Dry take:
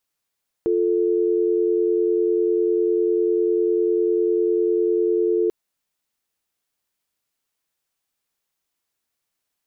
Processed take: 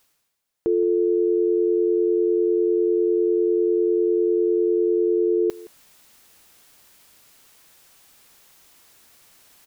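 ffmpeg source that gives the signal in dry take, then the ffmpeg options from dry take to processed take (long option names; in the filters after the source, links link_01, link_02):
-f lavfi -i "aevalsrc='0.106*(sin(2*PI*350*t)+sin(2*PI*440*t))':duration=4.84:sample_rate=44100"
-filter_complex "[0:a]areverse,acompressor=mode=upward:threshold=-33dB:ratio=2.5,areverse,asplit=2[link_01][link_02];[link_02]adelay=169.1,volume=-20dB,highshelf=frequency=4000:gain=-3.8[link_03];[link_01][link_03]amix=inputs=2:normalize=0"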